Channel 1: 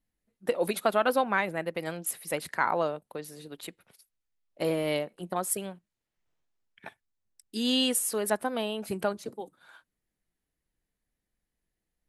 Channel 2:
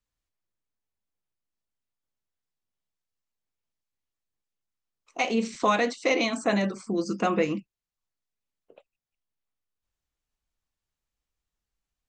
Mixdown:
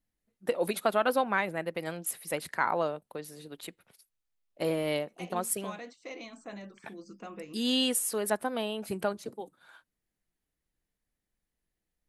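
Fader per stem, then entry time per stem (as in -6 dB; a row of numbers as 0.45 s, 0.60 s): -1.5 dB, -19.0 dB; 0.00 s, 0.00 s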